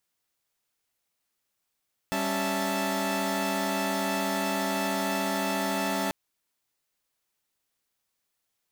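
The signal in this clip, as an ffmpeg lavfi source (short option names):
-f lavfi -i "aevalsrc='0.0335*((2*mod(196*t,1)-1)+(2*mod(277.18*t,1)-1)+(2*mod(659.26*t,1)-1)+(2*mod(880*t,1)-1))':d=3.99:s=44100"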